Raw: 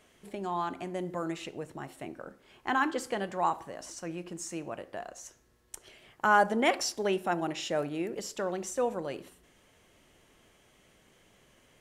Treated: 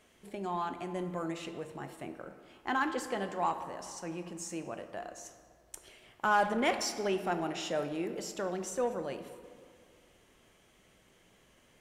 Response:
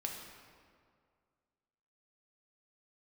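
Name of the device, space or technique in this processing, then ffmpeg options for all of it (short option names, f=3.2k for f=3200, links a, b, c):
saturated reverb return: -filter_complex "[0:a]asplit=2[a][b];[1:a]atrim=start_sample=2205[c];[b][c]afir=irnorm=-1:irlink=0,asoftclip=type=tanh:threshold=-25dB,volume=-1dB[d];[a][d]amix=inputs=2:normalize=0,volume=-6.5dB"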